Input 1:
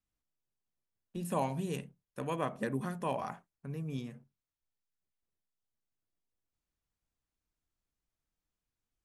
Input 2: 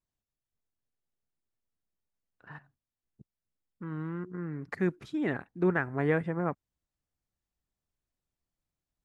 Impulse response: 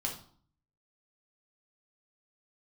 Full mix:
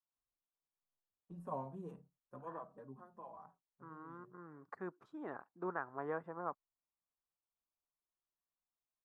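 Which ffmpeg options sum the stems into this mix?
-filter_complex "[0:a]tiltshelf=frequency=890:gain=3.5,asplit=2[link_01][link_02];[link_02]adelay=5.1,afreqshift=-1.4[link_03];[link_01][link_03]amix=inputs=2:normalize=1,adelay=150,volume=-13dB,afade=type=out:start_time=2.13:duration=0.75:silence=0.375837[link_04];[1:a]highpass=frequency=490:poles=1,volume=-12.5dB[link_05];[link_04][link_05]amix=inputs=2:normalize=0,firequalizer=gain_entry='entry(190,0);entry(1100,11);entry(2100,-12)':delay=0.05:min_phase=1"

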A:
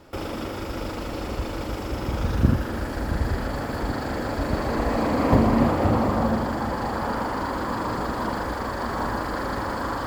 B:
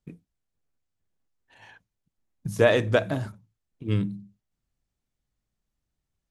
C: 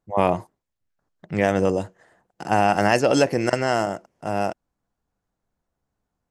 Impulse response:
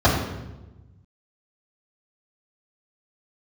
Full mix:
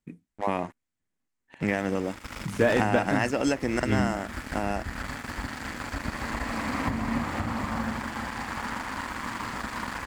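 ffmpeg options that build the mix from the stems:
-filter_complex "[0:a]equalizer=frequency=380:width=0.66:gain=-13.5,adelay=1550,volume=-2.5dB[link_01];[1:a]deesser=0.95,volume=-6dB[link_02];[2:a]adelay=300,volume=-1dB[link_03];[link_01][link_03]amix=inputs=2:normalize=0,aeval=exprs='sgn(val(0))*max(abs(val(0))-0.0119,0)':channel_layout=same,acompressor=threshold=-30dB:ratio=4,volume=0dB[link_04];[link_02][link_04]amix=inputs=2:normalize=0,equalizer=frequency=250:width_type=o:width=1:gain=10,equalizer=frequency=1000:width_type=o:width=1:gain=4,equalizer=frequency=2000:width_type=o:width=1:gain=9,equalizer=frequency=8000:width_type=o:width=1:gain=7"

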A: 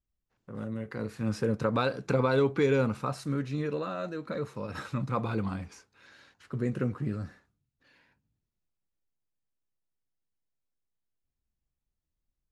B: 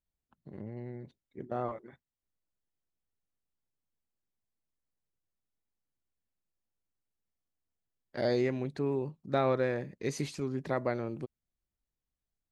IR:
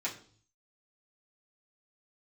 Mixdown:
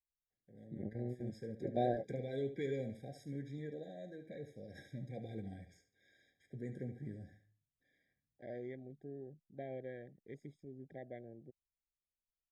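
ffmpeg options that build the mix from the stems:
-filter_complex "[0:a]dynaudnorm=framelen=230:gausssize=17:maxgain=5dB,volume=-19dB,asplit=4[link_01][link_02][link_03][link_04];[link_02]volume=-18.5dB[link_05];[link_03]volume=-10.5dB[link_06];[1:a]afwtdn=0.00708,adelay=250,volume=1.5dB[link_07];[link_04]apad=whole_len=563022[link_08];[link_07][link_08]sidechaingate=range=-18dB:threshold=-57dB:ratio=16:detection=peak[link_09];[2:a]atrim=start_sample=2205[link_10];[link_05][link_10]afir=irnorm=-1:irlink=0[link_11];[link_06]aecho=0:1:72|144|216|288:1|0.23|0.0529|0.0122[link_12];[link_01][link_09][link_11][link_12]amix=inputs=4:normalize=0,afftfilt=real='re*eq(mod(floor(b*sr/1024/790),2),0)':imag='im*eq(mod(floor(b*sr/1024/790),2),0)':win_size=1024:overlap=0.75"

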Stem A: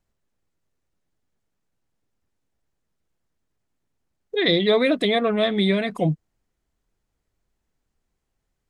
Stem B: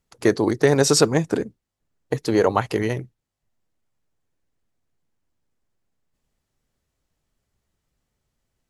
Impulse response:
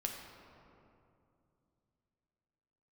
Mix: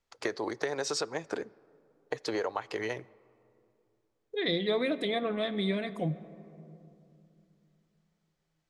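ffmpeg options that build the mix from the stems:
-filter_complex "[0:a]volume=-13dB,asplit=2[link_01][link_02];[link_02]volume=-8dB[link_03];[1:a]acrossover=split=420 7000:gain=0.158 1 0.1[link_04][link_05][link_06];[link_04][link_05][link_06]amix=inputs=3:normalize=0,acompressor=threshold=-27dB:ratio=12,volume=-2.5dB,asplit=2[link_07][link_08];[link_08]volume=-19.5dB[link_09];[2:a]atrim=start_sample=2205[link_10];[link_03][link_09]amix=inputs=2:normalize=0[link_11];[link_11][link_10]afir=irnorm=-1:irlink=0[link_12];[link_01][link_07][link_12]amix=inputs=3:normalize=0,bandreject=frequency=2800:width=29"

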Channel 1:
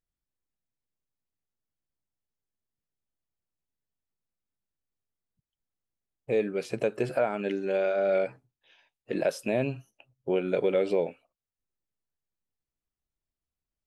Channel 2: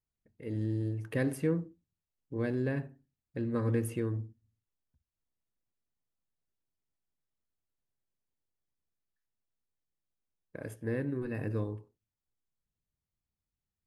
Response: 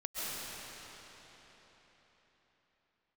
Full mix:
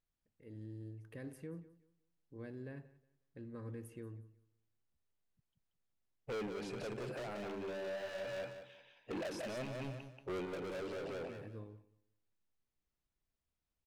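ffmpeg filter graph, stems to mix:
-filter_complex "[0:a]highshelf=frequency=7400:gain=-11.5,volume=33.5dB,asoftclip=hard,volume=-33.5dB,volume=-0.5dB,asplit=2[link_01][link_02];[link_02]volume=-3.5dB[link_03];[1:a]volume=-15.5dB,asplit=2[link_04][link_05];[link_05]volume=-19.5dB[link_06];[link_03][link_06]amix=inputs=2:normalize=0,aecho=0:1:182|364|546|728:1|0.25|0.0625|0.0156[link_07];[link_01][link_04][link_07]amix=inputs=3:normalize=0,alimiter=level_in=13.5dB:limit=-24dB:level=0:latency=1:release=14,volume=-13.5dB"

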